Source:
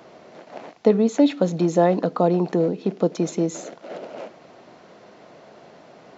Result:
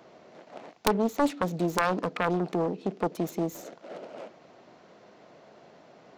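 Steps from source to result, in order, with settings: self-modulated delay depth 0.83 ms; integer overflow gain 6 dB; trim -6.5 dB

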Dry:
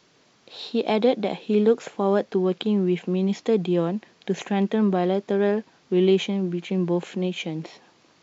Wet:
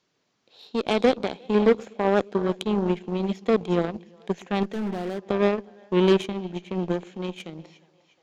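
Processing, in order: two-band feedback delay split 480 Hz, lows 119 ms, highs 356 ms, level -13 dB; Chebyshev shaper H 7 -19 dB, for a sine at -7.5 dBFS; 4.63–5.26 s: overload inside the chain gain 25 dB

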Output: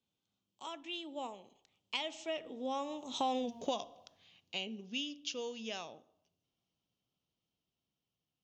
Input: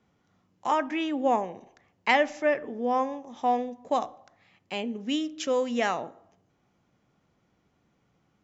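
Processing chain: Doppler pass-by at 3.44 s, 23 m/s, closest 2.4 m; resonant high shelf 2.4 kHz +8.5 dB, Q 3; compression 4:1, threshold -44 dBFS, peak gain reduction 14 dB; trim +10 dB

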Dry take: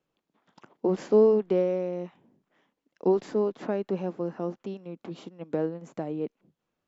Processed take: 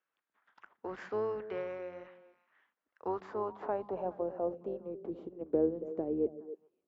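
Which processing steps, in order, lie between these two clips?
octave divider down 2 oct, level -3 dB; repeats whose band climbs or falls 139 ms, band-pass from 180 Hz, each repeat 1.4 oct, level -9 dB; band-pass sweep 1.6 kHz -> 400 Hz, 2.67–5.15 s; trim +3 dB

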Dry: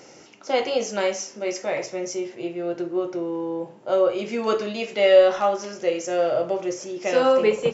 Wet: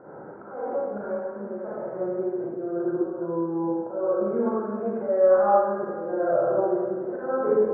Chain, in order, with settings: Chebyshev low-pass 1.6 kHz, order 6; slow attack 344 ms; compression 1.5:1, threshold -43 dBFS, peak gain reduction 10 dB; reverberation RT60 1.6 s, pre-delay 32 ms, DRR -9 dB

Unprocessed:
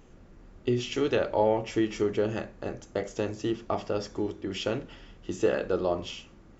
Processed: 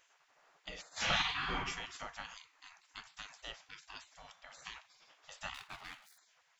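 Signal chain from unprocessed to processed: 0.91–1.54 s: reverb throw, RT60 1 s, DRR -11.5 dB; 5.54–6.18 s: median filter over 25 samples; spectral gate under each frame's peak -25 dB weak; trim -1 dB

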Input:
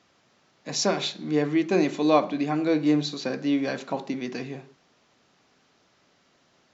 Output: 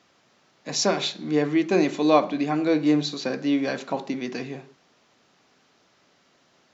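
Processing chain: bass shelf 93 Hz -7 dB; trim +2 dB

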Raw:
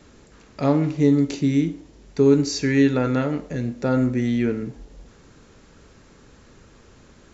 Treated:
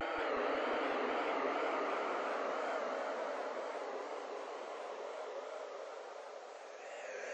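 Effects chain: high-pass 600 Hz 24 dB/octave; treble shelf 5.6 kHz -11 dB; reverse; compression, threshold -40 dBFS, peak gain reduction 17 dB; reverse; Paulstretch 44×, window 0.05 s, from 3.34 s; wow and flutter 130 cents; modulated delay 183 ms, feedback 73%, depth 185 cents, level -3.5 dB; trim +3.5 dB

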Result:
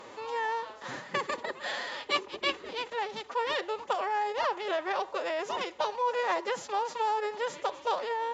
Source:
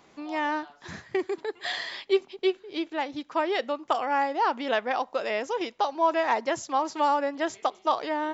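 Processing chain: spectral levelling over time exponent 0.6; formant-preserving pitch shift +7 st; trim -7 dB

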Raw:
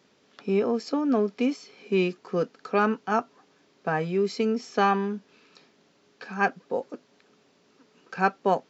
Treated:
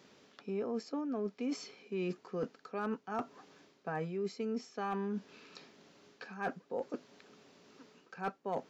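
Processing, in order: dynamic bell 3.9 kHz, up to -5 dB, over -44 dBFS, Q 0.73; reverse; compression 5:1, threshold -37 dBFS, peak gain reduction 18 dB; reverse; overload inside the chain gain 28 dB; trim +1.5 dB

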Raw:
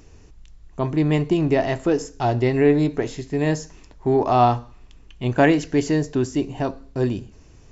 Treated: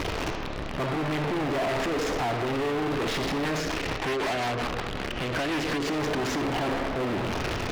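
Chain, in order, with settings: one-bit comparator; peaking EQ 4.6 kHz +4 dB 2.2 oct; reverberation RT60 2.0 s, pre-delay 10 ms, DRR 14.5 dB; 3.60–5.88 s: rotary cabinet horn 5.5 Hz; distance through air 200 m; overdrive pedal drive 28 dB, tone 3.5 kHz, clips at -13.5 dBFS; trim -8 dB

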